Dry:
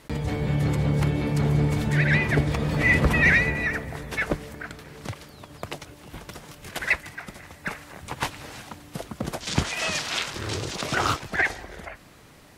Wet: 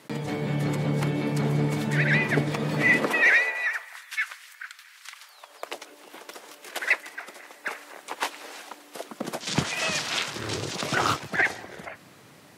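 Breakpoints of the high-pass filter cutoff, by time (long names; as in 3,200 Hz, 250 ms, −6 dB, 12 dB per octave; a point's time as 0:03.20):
high-pass filter 24 dB per octave
0:02.86 150 Hz
0:03.17 340 Hz
0:04.07 1,400 Hz
0:05.07 1,400 Hz
0:05.76 330 Hz
0:08.97 330 Hz
0:09.65 110 Hz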